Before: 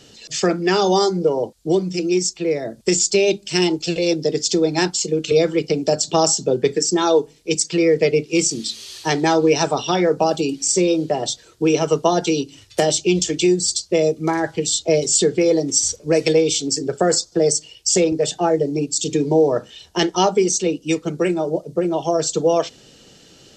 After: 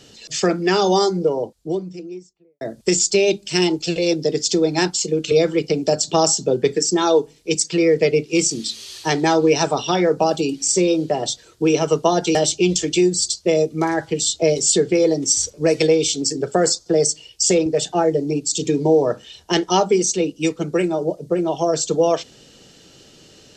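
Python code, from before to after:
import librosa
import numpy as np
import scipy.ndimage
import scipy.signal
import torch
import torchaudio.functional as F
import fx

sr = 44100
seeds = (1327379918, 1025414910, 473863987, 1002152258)

y = fx.studio_fade_out(x, sr, start_s=0.94, length_s=1.67)
y = fx.edit(y, sr, fx.cut(start_s=12.35, length_s=0.46), tone=tone)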